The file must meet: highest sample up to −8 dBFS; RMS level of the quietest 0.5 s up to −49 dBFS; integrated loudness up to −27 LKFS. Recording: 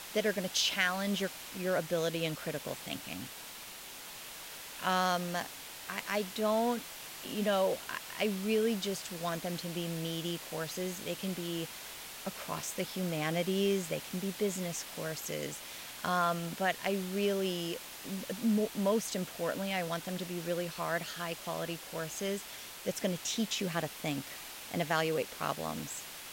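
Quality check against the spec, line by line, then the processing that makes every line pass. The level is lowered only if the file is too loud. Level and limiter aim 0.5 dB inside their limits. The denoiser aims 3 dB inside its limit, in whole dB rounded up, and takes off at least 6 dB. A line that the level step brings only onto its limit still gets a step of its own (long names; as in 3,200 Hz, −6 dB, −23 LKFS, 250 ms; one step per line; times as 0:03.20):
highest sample −14.5 dBFS: in spec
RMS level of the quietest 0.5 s −47 dBFS: out of spec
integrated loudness −35.0 LKFS: in spec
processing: broadband denoise 6 dB, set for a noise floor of −47 dBFS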